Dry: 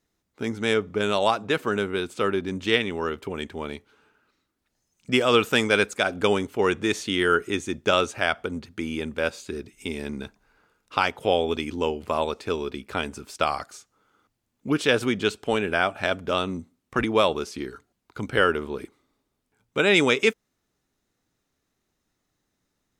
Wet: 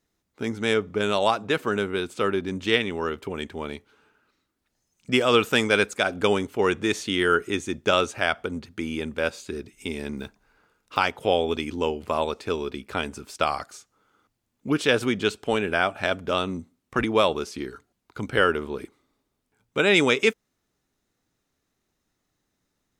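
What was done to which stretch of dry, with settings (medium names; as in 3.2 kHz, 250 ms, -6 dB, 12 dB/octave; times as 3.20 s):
10.17–11.00 s: block-companded coder 7-bit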